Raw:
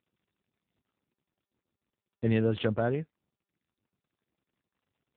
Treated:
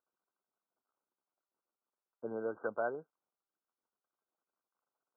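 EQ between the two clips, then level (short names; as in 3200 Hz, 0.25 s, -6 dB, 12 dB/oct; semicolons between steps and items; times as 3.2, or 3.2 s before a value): HPF 700 Hz 12 dB/oct; brick-wall FIR low-pass 1600 Hz; air absorption 480 m; +1.5 dB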